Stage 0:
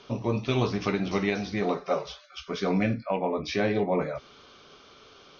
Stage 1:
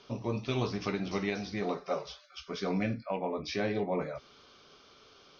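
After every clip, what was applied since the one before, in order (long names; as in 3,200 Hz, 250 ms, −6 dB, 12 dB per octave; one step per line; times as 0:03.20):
parametric band 5,000 Hz +4.5 dB 0.46 octaves
level −6 dB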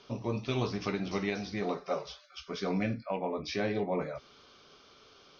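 no processing that can be heard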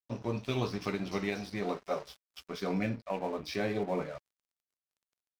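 dead-zone distortion −48.5 dBFS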